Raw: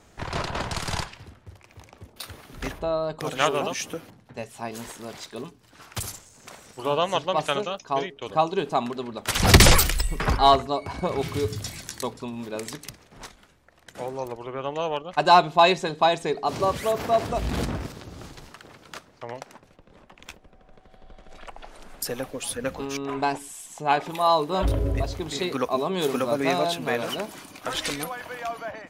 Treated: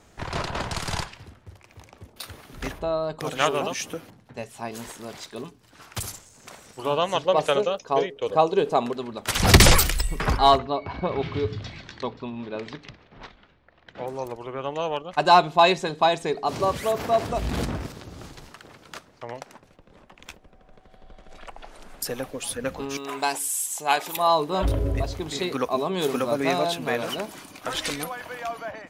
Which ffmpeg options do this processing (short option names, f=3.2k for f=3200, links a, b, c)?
-filter_complex "[0:a]asettb=1/sr,asplit=3[a][b][c];[a]atrim=end=7.254[d];[b]atrim=start=7.25:end=8.93,asetpts=PTS-STARTPTS,afade=t=in:d=0.004:c=qsin,afade=t=out:st=1.676:d=0.004:c=qsin,equalizer=f=490:t=o:w=0.46:g=12[e];[c]atrim=start=8.926[f];[d][e]acrossfade=d=0.004:c1=hsin:c2=qsin[g];[g][f]acrossfade=d=0.004:c1=qsin:c2=hsin,asplit=3[h][i][j];[h]afade=t=out:st=10.57:d=0.02[k];[i]lowpass=f=4k:w=0.5412,lowpass=f=4k:w=1.3066,afade=t=in:st=10.57:d=0.02,afade=t=out:st=14.06:d=0.02[l];[j]afade=t=in:st=14.06:d=0.02[m];[k][l][m]amix=inputs=3:normalize=0,asettb=1/sr,asplit=3[n][o][p];[n]atrim=end=22.974[q];[o]atrim=start=22.97:end=24.17,asetpts=PTS-STARTPTS,afade=t=in:d=0.004:c=qsin,afade=t=out:st=1.196:d=0.004:c=qsin,aemphasis=mode=production:type=riaa[r];[p]atrim=start=24.166[s];[q][r]acrossfade=d=0.004:c1=hsin:c2=qsin[t];[t][s]acrossfade=d=0.004:c1=qsin:c2=hsin"